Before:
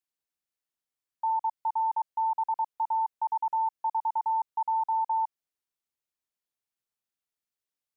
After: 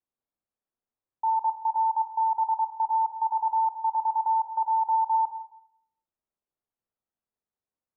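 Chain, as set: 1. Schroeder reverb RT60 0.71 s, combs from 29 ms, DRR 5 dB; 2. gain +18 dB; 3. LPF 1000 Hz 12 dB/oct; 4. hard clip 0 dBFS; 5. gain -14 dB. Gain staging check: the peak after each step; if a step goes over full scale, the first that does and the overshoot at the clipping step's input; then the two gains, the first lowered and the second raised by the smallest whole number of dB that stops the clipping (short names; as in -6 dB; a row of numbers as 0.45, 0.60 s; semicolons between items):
-19.5, -1.5, -3.5, -3.5, -17.5 dBFS; no overload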